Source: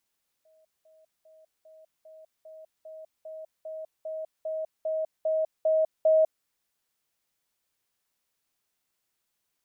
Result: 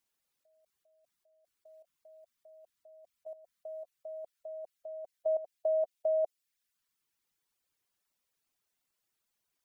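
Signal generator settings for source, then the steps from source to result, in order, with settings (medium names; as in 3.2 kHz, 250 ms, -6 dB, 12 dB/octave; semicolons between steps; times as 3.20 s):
level ladder 633 Hz -59 dBFS, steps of 3 dB, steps 15, 0.20 s 0.20 s
reverb removal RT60 1 s; level held to a coarse grid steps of 14 dB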